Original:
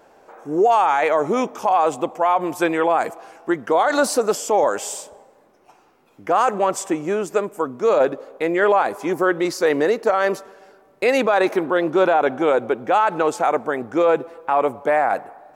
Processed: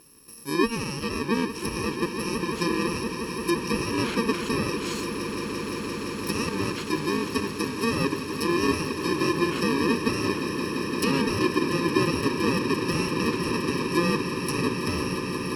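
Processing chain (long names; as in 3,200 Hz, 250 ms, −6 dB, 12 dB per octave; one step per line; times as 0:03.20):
samples in bit-reversed order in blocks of 64 samples
treble cut that deepens with the level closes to 2,800 Hz, closed at −17.5 dBFS
echo that builds up and dies away 172 ms, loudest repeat 8, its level −13 dB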